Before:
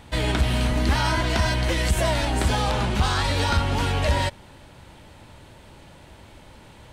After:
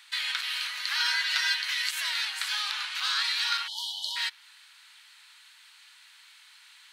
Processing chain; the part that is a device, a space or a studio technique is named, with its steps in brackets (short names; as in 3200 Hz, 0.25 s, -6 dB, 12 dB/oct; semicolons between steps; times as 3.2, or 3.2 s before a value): 3.67–4.16 spectral delete 970–2900 Hz; HPF 1400 Hz 12 dB/oct; 0.99–1.62 comb 7.5 ms, depth 74%; dynamic EQ 8300 Hz, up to -7 dB, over -49 dBFS, Q 1.5; headphones lying on a table (HPF 1200 Hz 24 dB/oct; bell 4200 Hz +6 dB 0.33 oct)